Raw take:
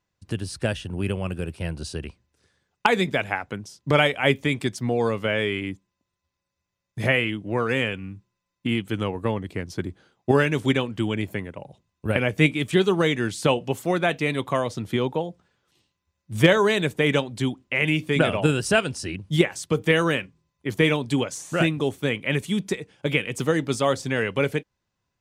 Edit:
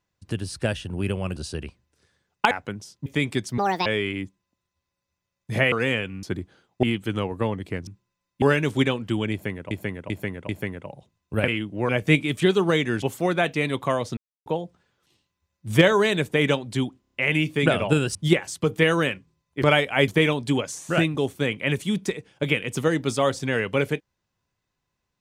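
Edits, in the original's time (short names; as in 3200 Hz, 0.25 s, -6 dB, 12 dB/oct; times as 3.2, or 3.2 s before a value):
1.36–1.77 cut
2.92–3.35 cut
3.9–4.35 move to 20.71
4.87–5.34 speed 168%
7.2–7.61 move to 12.2
8.12–8.67 swap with 9.71–10.31
11.21–11.6 loop, 4 plays
13.33–13.67 cut
14.82–15.11 mute
17.66 stutter 0.03 s, 5 plays
18.68–19.23 cut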